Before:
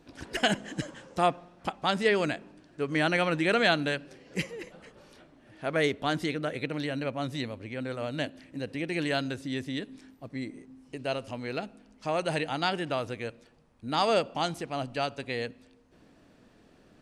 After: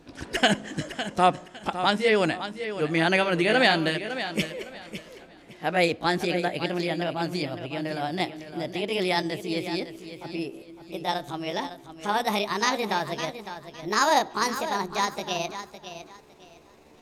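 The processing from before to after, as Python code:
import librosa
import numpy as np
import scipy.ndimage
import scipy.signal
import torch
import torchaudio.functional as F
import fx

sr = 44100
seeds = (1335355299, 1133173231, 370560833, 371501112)

y = fx.pitch_glide(x, sr, semitones=7.0, runs='starting unshifted')
y = fx.echo_feedback(y, sr, ms=557, feedback_pct=24, wet_db=-11.0)
y = F.gain(torch.from_numpy(y), 5.0).numpy()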